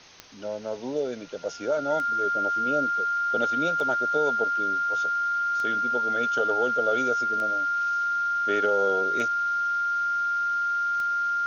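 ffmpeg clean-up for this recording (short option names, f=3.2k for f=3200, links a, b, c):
-af "adeclick=t=4,bandreject=f=1.4k:w=30,afwtdn=0.0045"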